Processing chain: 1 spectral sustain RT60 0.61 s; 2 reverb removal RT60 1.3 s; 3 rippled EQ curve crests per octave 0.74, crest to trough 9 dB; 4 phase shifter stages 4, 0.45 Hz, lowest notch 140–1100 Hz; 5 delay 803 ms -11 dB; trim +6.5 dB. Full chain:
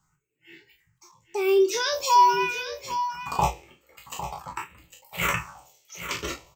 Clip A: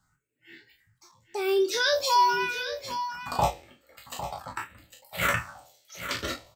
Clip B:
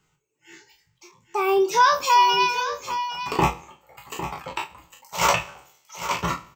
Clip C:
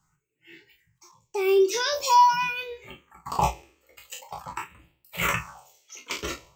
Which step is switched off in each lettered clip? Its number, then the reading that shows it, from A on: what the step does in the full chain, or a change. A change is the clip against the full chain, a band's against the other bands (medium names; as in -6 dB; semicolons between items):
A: 3, 4 kHz band +4.0 dB; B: 4, 500 Hz band -3.0 dB; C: 5, momentary loudness spread change +3 LU